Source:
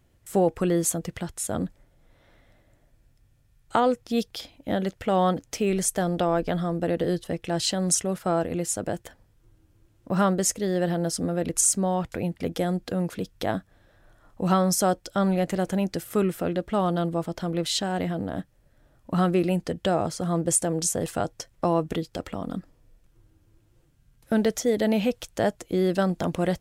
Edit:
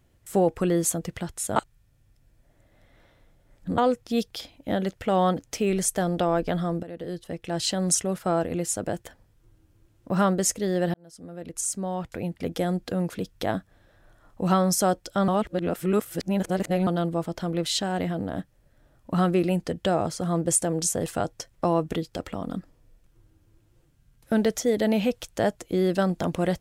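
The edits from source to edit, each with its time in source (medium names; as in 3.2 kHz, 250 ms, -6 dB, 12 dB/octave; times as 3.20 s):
1.56–3.78 s: reverse
6.83–7.78 s: fade in, from -16.5 dB
10.94–12.67 s: fade in
15.28–16.87 s: reverse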